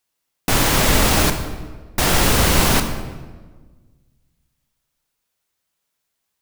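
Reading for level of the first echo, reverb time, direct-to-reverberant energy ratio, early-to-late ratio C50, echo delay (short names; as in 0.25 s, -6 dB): none, 1.4 s, 6.0 dB, 8.0 dB, none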